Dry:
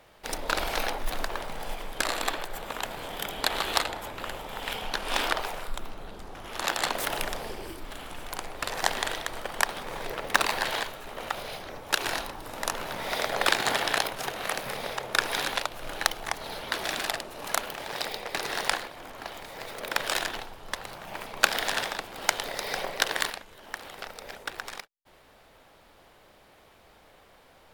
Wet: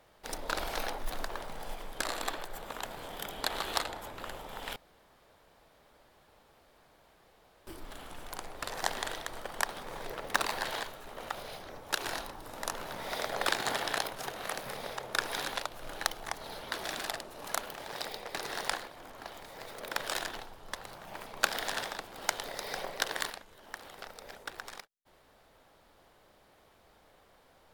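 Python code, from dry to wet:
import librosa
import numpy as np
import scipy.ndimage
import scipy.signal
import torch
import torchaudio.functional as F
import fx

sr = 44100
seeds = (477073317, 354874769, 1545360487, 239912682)

y = fx.edit(x, sr, fx.room_tone_fill(start_s=4.76, length_s=2.91), tone=tone)
y = fx.peak_eq(y, sr, hz=2500.0, db=-3.5, octaves=0.77)
y = y * librosa.db_to_amplitude(-5.5)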